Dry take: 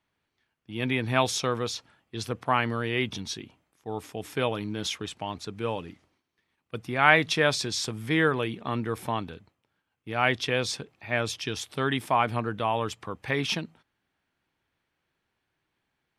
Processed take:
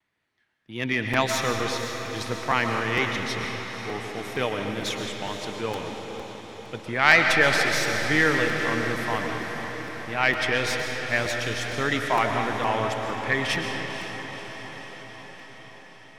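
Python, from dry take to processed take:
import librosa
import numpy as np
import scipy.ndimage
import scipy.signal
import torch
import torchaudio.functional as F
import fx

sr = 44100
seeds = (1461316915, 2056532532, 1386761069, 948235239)

y = fx.tracing_dist(x, sr, depth_ms=0.069)
y = scipy.signal.sosfilt(scipy.signal.butter(2, 12000.0, 'lowpass', fs=sr, output='sos'), y)
y = fx.peak_eq(y, sr, hz=1900.0, db=7.5, octaves=0.37)
y = fx.vibrato(y, sr, rate_hz=1.7, depth_cents=75.0)
y = fx.low_shelf(y, sr, hz=70.0, db=-6.0)
y = fx.echo_diffused(y, sr, ms=504, feedback_pct=65, wet_db=-9.0)
y = fx.rev_freeverb(y, sr, rt60_s=1.9, hf_ratio=0.85, predelay_ms=85, drr_db=4.0)
y = fx.buffer_crackle(y, sr, first_s=0.67, period_s=0.46, block=256, kind='repeat')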